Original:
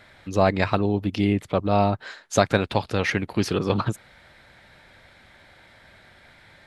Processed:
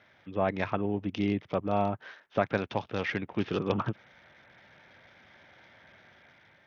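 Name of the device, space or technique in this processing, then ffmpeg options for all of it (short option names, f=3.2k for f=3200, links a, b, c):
Bluetooth headset: -af "highpass=110,dynaudnorm=f=310:g=5:m=5dB,aresample=8000,aresample=44100,volume=-9dB" -ar 48000 -c:a sbc -b:a 64k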